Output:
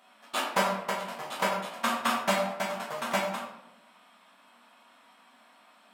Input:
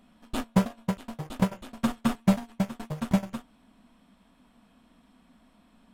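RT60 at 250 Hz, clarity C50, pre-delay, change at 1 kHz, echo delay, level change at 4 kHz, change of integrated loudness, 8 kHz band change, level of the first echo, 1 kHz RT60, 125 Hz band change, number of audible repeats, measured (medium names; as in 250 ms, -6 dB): 1.1 s, 4.5 dB, 7 ms, +7.5 dB, no echo, +8.0 dB, -0.5 dB, +6.0 dB, no echo, 0.80 s, -13.5 dB, no echo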